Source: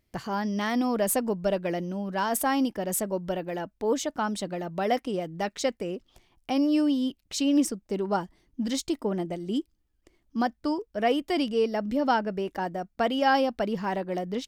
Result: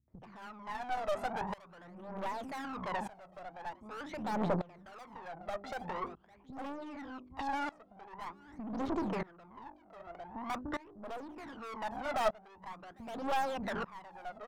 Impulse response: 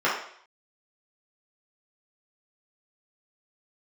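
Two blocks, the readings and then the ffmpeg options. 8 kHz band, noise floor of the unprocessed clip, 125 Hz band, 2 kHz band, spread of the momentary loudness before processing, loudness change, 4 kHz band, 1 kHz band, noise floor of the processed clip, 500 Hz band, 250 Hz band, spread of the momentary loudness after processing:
−22.5 dB, −72 dBFS, −9.5 dB, −9.0 dB, 8 LU, −11.5 dB, −14.5 dB, −8.0 dB, −61 dBFS, −12.5 dB, −15.0 dB, 17 LU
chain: -filter_complex "[0:a]lowpass=1600,bandreject=frequency=50:width_type=h:width=6,bandreject=frequency=100:width_type=h:width=6,bandreject=frequency=150:width_type=h:width=6,bandreject=frequency=200:width_type=h:width=6,bandreject=frequency=250:width_type=h:width=6,bandreject=frequency=300:width_type=h:width=6,bandreject=frequency=350:width_type=h:width=6,bandreject=frequency=400:width_type=h:width=6,acrossover=split=220[link_01][link_02];[link_02]adelay=80[link_03];[link_01][link_03]amix=inputs=2:normalize=0,aeval=exprs='(tanh(126*val(0)+0.6)-tanh(0.6))/126':channel_layout=same,asplit=2[link_04][link_05];[link_05]aecho=0:1:802:0.112[link_06];[link_04][link_06]amix=inputs=2:normalize=0,acompressor=threshold=-54dB:ratio=5,highpass=67,aphaser=in_gain=1:out_gain=1:delay=1.6:decay=0.7:speed=0.45:type=triangular,equalizer=frequency=950:width=0.81:gain=12.5,aeval=exprs='0.0141*(cos(1*acos(clip(val(0)/0.0141,-1,1)))-cos(1*PI/2))+0.00398*(cos(2*acos(clip(val(0)/0.0141,-1,1)))-cos(2*PI/2))':channel_layout=same,aeval=exprs='val(0)*pow(10,-22*if(lt(mod(-0.65*n/s,1),2*abs(-0.65)/1000),1-mod(-0.65*n/s,1)/(2*abs(-0.65)/1000),(mod(-0.65*n/s,1)-2*abs(-0.65)/1000)/(1-2*abs(-0.65)/1000))/20)':channel_layout=same,volume=15dB"

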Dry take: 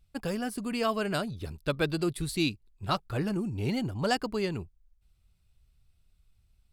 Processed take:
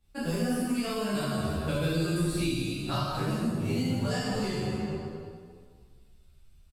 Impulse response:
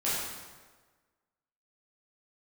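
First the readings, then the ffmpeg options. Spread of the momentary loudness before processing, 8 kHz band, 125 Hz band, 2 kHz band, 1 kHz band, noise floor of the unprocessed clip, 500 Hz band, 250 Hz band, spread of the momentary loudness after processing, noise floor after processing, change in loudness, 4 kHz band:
6 LU, +3.0 dB, +4.0 dB, −1.5 dB, −1.5 dB, −68 dBFS, −0.5 dB, +2.5 dB, 6 LU, −57 dBFS, +1.0 dB, 0.0 dB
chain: -filter_complex "[1:a]atrim=start_sample=2205,asetrate=32634,aresample=44100[link_01];[0:a][link_01]afir=irnorm=-1:irlink=0,acrossover=split=170|4700[link_02][link_03][link_04];[link_02]acompressor=threshold=-28dB:ratio=4[link_05];[link_03]acompressor=threshold=-29dB:ratio=4[link_06];[link_04]acompressor=threshold=-39dB:ratio=4[link_07];[link_05][link_06][link_07]amix=inputs=3:normalize=0,asplit=2[link_08][link_09];[link_09]adelay=10.4,afreqshift=0.6[link_10];[link_08][link_10]amix=inputs=2:normalize=1"

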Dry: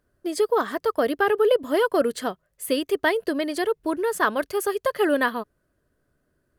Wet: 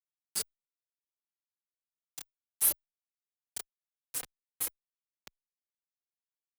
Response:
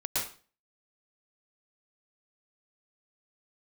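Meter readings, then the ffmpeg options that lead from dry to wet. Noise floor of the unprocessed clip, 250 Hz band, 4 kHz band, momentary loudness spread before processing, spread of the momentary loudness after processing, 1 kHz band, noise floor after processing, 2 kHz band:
−73 dBFS, −36.0 dB, −12.5 dB, 9 LU, 21 LU, −31.0 dB, below −85 dBFS, −27.0 dB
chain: -filter_complex "[0:a]acompressor=threshold=-30dB:ratio=12,equalizer=frequency=2300:width_type=o:width=0.72:gain=-11.5,afftdn=noise_reduction=18:noise_floor=-46,afreqshift=35,highpass=frequency=500:poles=1,aemphasis=mode=production:type=riaa,bandreject=frequency=640:width=12,asplit=2[link_01][link_02];[link_02]adelay=29,volume=-2dB[link_03];[link_01][link_03]amix=inputs=2:normalize=0,acrusher=bits=3:mix=0:aa=0.000001,asplit=2[link_04][link_05];[link_05]adelay=3.2,afreqshift=0.4[link_06];[link_04][link_06]amix=inputs=2:normalize=1,volume=-4.5dB"

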